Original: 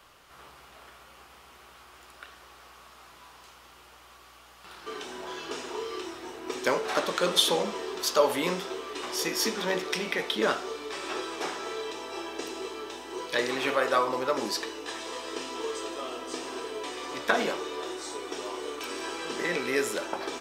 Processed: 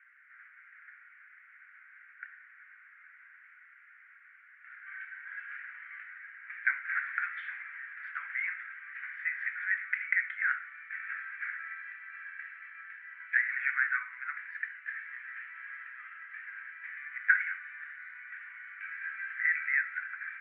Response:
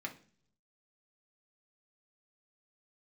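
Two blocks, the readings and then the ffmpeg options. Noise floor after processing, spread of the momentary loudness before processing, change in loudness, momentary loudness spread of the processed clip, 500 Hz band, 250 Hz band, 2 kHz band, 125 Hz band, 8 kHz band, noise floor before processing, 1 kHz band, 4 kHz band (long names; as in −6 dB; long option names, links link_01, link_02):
−58 dBFS, 13 LU, −4.0 dB, 24 LU, below −40 dB, below −40 dB, +4.0 dB, below −40 dB, below −40 dB, −53 dBFS, −13.0 dB, below −30 dB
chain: -af "asuperpass=centerf=1800:order=8:qfactor=2.4,volume=5.5dB"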